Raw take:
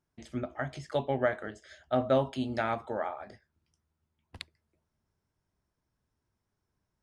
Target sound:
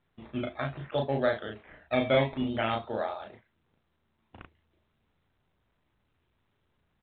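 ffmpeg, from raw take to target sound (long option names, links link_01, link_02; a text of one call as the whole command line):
ffmpeg -i in.wav -filter_complex "[0:a]asettb=1/sr,asplit=3[link_01][link_02][link_03];[link_01]atrim=end=3.234[link_04];[link_02]atrim=start=3.23:end=4.4,asetpts=PTS-STARTPTS,afade=type=in:duration=0.004:curve=qsin,afade=type=out:start_time=1.166:duration=0.004:curve=qsin,highpass=120[link_05];[link_03]atrim=start=4.396[link_06];[link_04][link_05]acrossfade=duration=0.004:curve1=hsin:curve2=qsin[link_07];[link_07][link_06]acrossfade=duration=0.004:curve1=qsin:curve2=hsin,acrusher=samples=12:mix=1:aa=0.000001:lfo=1:lforange=7.2:lforate=0.58,asplit=2[link_08][link_09];[link_09]adelay=36,volume=-3dB[link_10];[link_08][link_10]amix=inputs=2:normalize=0" -ar 8000 -c:a pcm_mulaw out.wav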